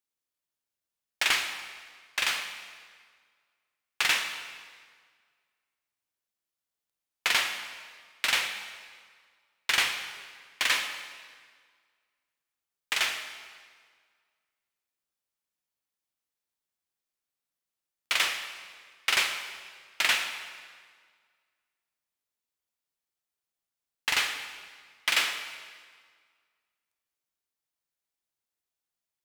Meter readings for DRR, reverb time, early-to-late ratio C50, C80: 7.0 dB, 1.8 s, 8.0 dB, 9.0 dB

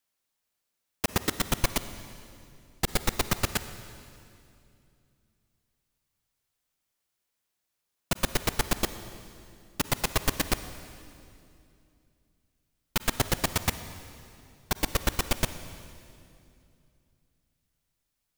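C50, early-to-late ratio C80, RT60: 12.0 dB, 12.5 dB, 2.6 s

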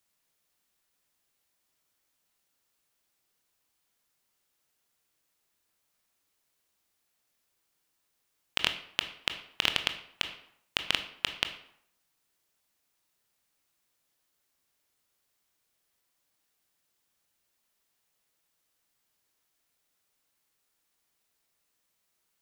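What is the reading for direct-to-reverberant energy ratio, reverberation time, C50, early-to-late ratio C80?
7.5 dB, 0.70 s, 11.0 dB, 14.0 dB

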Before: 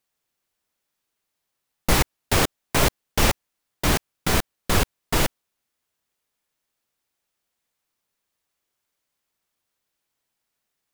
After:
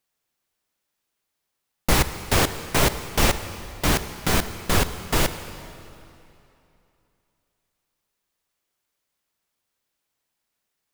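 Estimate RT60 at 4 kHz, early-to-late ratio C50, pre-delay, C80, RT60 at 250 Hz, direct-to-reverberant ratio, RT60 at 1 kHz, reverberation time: 2.4 s, 11.0 dB, 35 ms, 11.5 dB, 2.9 s, 10.5 dB, 2.9 s, 2.8 s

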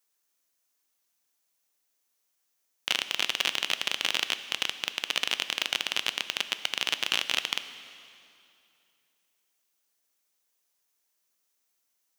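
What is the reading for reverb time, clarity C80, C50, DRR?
2.7 s, 13.0 dB, 12.0 dB, 11.0 dB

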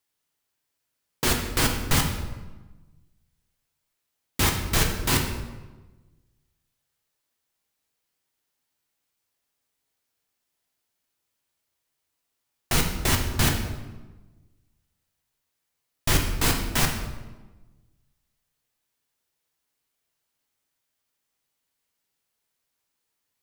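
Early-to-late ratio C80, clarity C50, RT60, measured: 8.0 dB, 6.0 dB, 1.2 s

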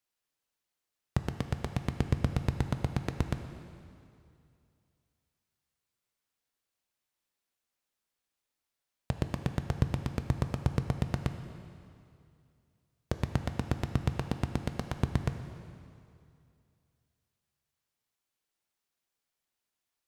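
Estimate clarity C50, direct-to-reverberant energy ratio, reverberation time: 8.5 dB, 7.5 dB, 2.5 s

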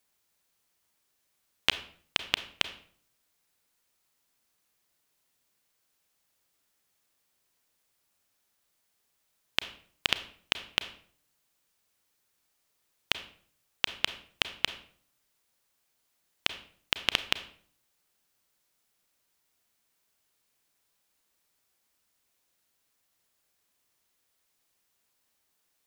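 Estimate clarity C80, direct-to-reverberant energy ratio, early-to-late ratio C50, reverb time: 16.5 dB, 11.0 dB, 13.0 dB, 0.55 s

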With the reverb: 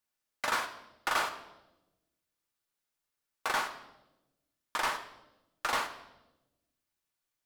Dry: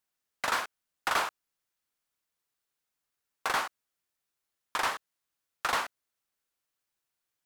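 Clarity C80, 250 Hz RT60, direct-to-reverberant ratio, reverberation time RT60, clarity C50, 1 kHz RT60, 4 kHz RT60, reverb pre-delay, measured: 14.0 dB, 1.4 s, 5.5 dB, 0.95 s, 11.5 dB, 0.85 s, 0.85 s, 3 ms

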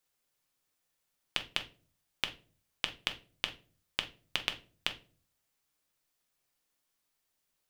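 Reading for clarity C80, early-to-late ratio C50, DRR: 21.0 dB, 14.0 dB, 5.5 dB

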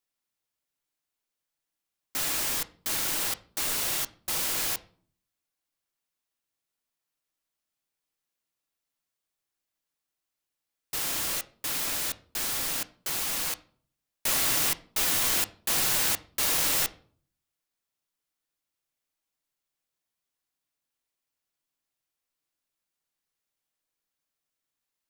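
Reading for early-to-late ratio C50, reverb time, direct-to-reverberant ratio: 18.5 dB, 0.50 s, 10.5 dB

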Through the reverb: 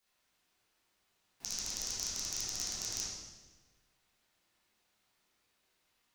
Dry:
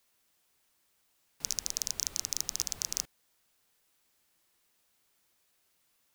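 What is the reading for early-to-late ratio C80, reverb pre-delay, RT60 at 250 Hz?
1.5 dB, 9 ms, 1.6 s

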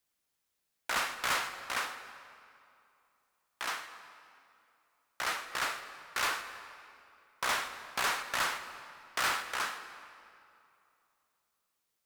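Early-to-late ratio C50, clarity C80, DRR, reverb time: 10.0 dB, 10.5 dB, 9.5 dB, 2.7 s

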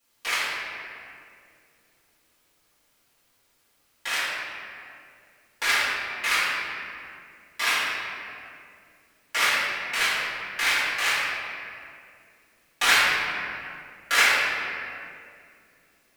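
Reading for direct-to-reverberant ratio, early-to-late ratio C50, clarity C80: -14.5 dB, -3.0 dB, -1.0 dB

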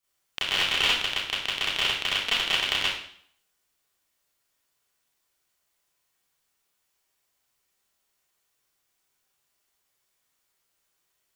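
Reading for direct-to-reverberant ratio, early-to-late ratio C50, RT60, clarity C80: -10.0 dB, 1.0 dB, 0.60 s, 5.0 dB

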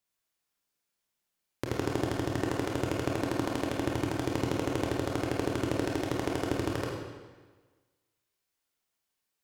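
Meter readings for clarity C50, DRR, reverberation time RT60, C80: 1.0 dB, -2.0 dB, 1.4 s, 3.5 dB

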